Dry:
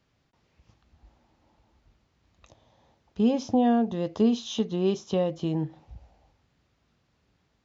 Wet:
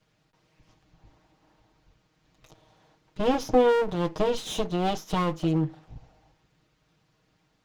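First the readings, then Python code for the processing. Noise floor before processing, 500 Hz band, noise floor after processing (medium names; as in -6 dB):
-71 dBFS, +3.0 dB, -70 dBFS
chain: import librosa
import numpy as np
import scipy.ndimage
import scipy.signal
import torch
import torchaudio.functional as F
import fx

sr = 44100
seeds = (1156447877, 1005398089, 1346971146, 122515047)

y = fx.lower_of_two(x, sr, delay_ms=6.4)
y = y * librosa.db_to_amplitude(3.5)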